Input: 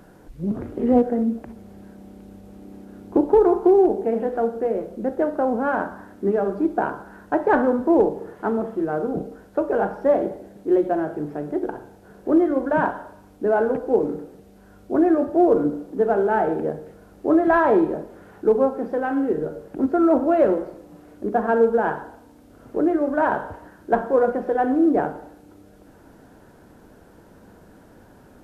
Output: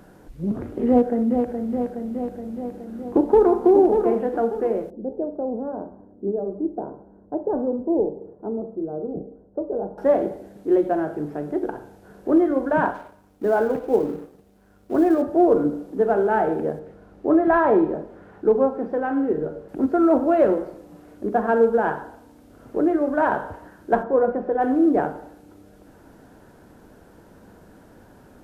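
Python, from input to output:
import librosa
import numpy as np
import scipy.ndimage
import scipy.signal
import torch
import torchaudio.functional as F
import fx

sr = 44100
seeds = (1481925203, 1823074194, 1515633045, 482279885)

y = fx.echo_throw(x, sr, start_s=0.88, length_s=0.59, ms=420, feedback_pct=70, wet_db=-5.5)
y = fx.echo_throw(y, sr, start_s=2.72, length_s=0.9, ms=590, feedback_pct=30, wet_db=-6.0)
y = fx.ladder_lowpass(y, sr, hz=750.0, resonance_pct=20, at=(4.9, 9.98))
y = fx.law_mismatch(y, sr, coded='A', at=(12.94, 15.22))
y = fx.lowpass(y, sr, hz=2300.0, slope=6, at=(16.79, 19.69))
y = fx.lowpass(y, sr, hz=1200.0, slope=6, at=(24.02, 24.6), fade=0.02)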